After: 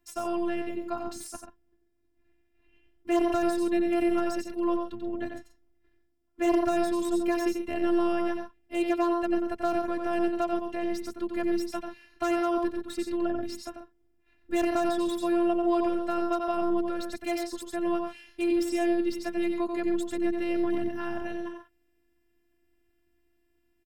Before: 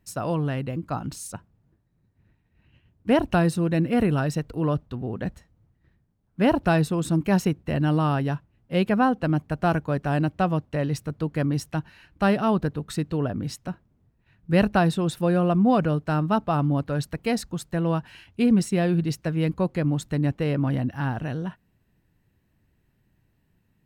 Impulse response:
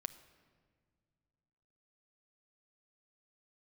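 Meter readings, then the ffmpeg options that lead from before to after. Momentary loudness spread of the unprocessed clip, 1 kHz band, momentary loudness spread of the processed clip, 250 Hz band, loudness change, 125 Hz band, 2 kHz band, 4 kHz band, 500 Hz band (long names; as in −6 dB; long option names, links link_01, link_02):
11 LU, −4.0 dB, 10 LU, −3.5 dB, −4.5 dB, below −25 dB, −6.0 dB, −5.0 dB, −1.5 dB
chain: -filter_complex "[0:a]highpass=57,afftfilt=real='hypot(re,im)*cos(PI*b)':imag='0':win_size=512:overlap=0.75,aecho=1:1:90.38|134.1:0.501|0.282,acrossover=split=1300[link_01][link_02];[link_02]aeval=exprs='0.0282*(abs(mod(val(0)/0.0282+3,4)-2)-1)':channel_layout=same[link_03];[link_01][link_03]amix=inputs=2:normalize=0,acrossover=split=360|3000[link_04][link_05][link_06];[link_05]acompressor=threshold=-25dB:ratio=8[link_07];[link_04][link_07][link_06]amix=inputs=3:normalize=0"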